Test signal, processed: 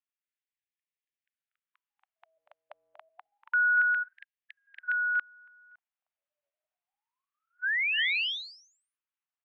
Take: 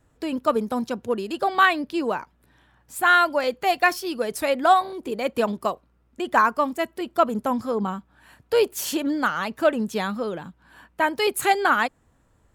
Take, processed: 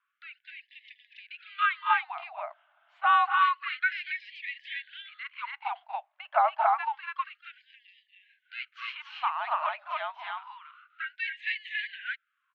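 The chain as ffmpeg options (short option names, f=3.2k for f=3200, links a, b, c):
-af "highpass=f=170:t=q:w=0.5412,highpass=f=170:t=q:w=1.307,lowpass=f=3.4k:t=q:w=0.5176,lowpass=f=3.4k:t=q:w=0.7071,lowpass=f=3.4k:t=q:w=1.932,afreqshift=-280,aecho=1:1:239.1|279.9:0.316|0.891,afftfilt=real='re*gte(b*sr/1024,560*pow(1700/560,0.5+0.5*sin(2*PI*0.28*pts/sr)))':imag='im*gte(b*sr/1024,560*pow(1700/560,0.5+0.5*sin(2*PI*0.28*pts/sr)))':win_size=1024:overlap=0.75,volume=-4.5dB"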